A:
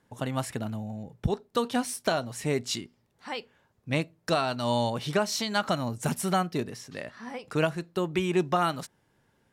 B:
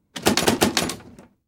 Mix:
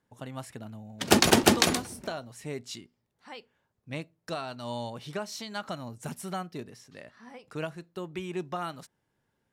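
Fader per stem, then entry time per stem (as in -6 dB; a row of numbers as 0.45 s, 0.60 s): -9.0 dB, -1.5 dB; 0.00 s, 0.85 s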